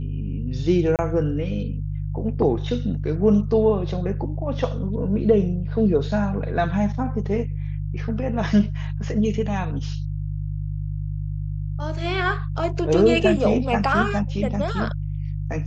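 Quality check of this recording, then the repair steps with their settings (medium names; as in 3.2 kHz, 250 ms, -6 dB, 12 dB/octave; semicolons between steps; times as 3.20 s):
hum 50 Hz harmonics 3 -27 dBFS
0.96–0.99 s: dropout 28 ms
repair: de-hum 50 Hz, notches 3; interpolate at 0.96 s, 28 ms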